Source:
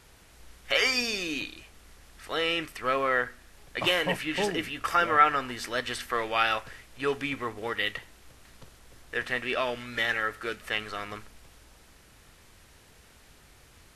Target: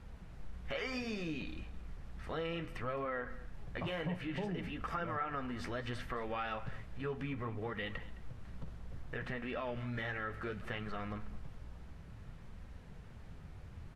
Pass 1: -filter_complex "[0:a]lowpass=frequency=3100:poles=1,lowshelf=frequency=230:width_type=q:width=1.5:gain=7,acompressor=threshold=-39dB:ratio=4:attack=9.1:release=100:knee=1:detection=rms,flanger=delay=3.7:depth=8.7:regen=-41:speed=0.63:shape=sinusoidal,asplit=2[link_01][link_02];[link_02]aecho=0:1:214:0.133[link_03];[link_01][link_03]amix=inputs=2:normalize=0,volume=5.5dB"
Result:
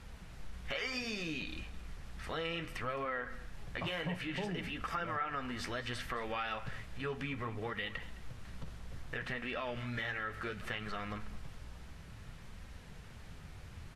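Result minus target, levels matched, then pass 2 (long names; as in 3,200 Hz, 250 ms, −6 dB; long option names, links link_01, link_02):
4,000 Hz band +4.5 dB
-filter_complex "[0:a]lowpass=frequency=870:poles=1,lowshelf=frequency=230:width_type=q:width=1.5:gain=7,acompressor=threshold=-39dB:ratio=4:attack=9.1:release=100:knee=1:detection=rms,flanger=delay=3.7:depth=8.7:regen=-41:speed=0.63:shape=sinusoidal,asplit=2[link_01][link_02];[link_02]aecho=0:1:214:0.133[link_03];[link_01][link_03]amix=inputs=2:normalize=0,volume=5.5dB"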